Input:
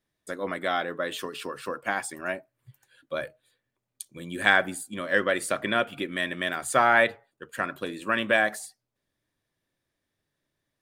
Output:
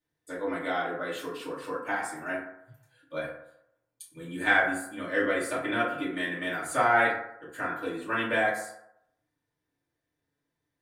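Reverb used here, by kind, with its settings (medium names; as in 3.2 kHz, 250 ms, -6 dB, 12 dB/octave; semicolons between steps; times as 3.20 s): FDN reverb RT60 0.77 s, low-frequency decay 0.8×, high-frequency decay 0.4×, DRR -10 dB; trim -12.5 dB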